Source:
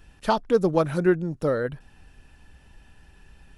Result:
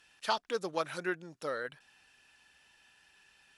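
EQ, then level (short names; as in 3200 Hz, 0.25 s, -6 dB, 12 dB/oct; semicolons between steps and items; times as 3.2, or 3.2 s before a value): band-pass 4400 Hz, Q 0.51; 0.0 dB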